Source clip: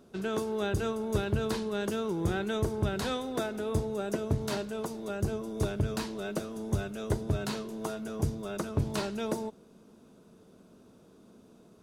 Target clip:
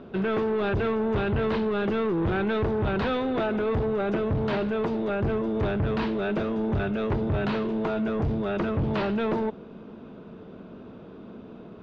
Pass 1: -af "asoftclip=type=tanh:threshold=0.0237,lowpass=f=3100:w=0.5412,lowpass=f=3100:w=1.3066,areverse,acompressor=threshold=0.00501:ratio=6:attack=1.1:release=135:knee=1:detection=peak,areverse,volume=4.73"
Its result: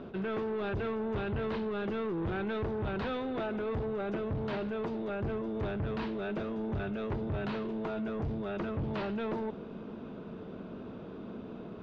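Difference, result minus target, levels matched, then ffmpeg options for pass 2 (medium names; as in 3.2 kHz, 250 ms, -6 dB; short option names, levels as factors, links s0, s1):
compression: peak gain reduction +8.5 dB
-af "asoftclip=type=tanh:threshold=0.0237,lowpass=f=3100:w=0.5412,lowpass=f=3100:w=1.3066,areverse,acompressor=threshold=0.0158:ratio=6:attack=1.1:release=135:knee=1:detection=peak,areverse,volume=4.73"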